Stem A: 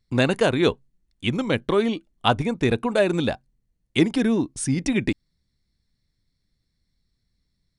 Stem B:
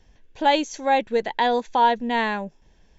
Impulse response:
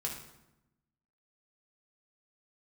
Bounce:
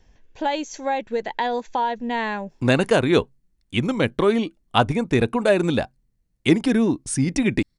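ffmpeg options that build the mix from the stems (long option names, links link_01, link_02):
-filter_complex "[0:a]adelay=2500,volume=2dB[link_01];[1:a]acompressor=threshold=-20dB:ratio=4,volume=0dB[link_02];[link_01][link_02]amix=inputs=2:normalize=0,equalizer=frequency=3500:width_type=o:width=0.56:gain=-2.5"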